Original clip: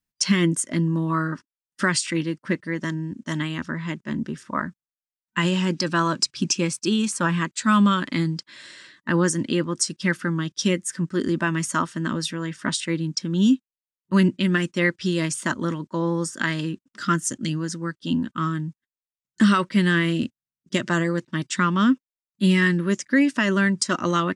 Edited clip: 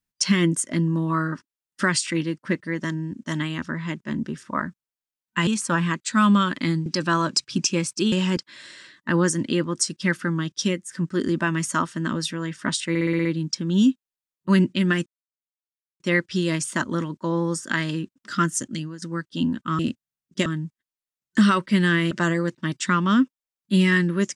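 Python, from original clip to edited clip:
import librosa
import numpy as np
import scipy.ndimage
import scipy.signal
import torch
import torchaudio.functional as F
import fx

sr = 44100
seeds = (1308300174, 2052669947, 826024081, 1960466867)

y = fx.edit(x, sr, fx.swap(start_s=5.47, length_s=0.25, other_s=6.98, other_length_s=1.39),
    fx.fade_out_to(start_s=10.59, length_s=0.32, floor_db=-10.0),
    fx.stutter(start_s=12.89, slice_s=0.06, count=7),
    fx.insert_silence(at_s=14.7, length_s=0.94),
    fx.fade_out_to(start_s=17.3, length_s=0.42, floor_db=-14.5),
    fx.move(start_s=20.14, length_s=0.67, to_s=18.49), tone=tone)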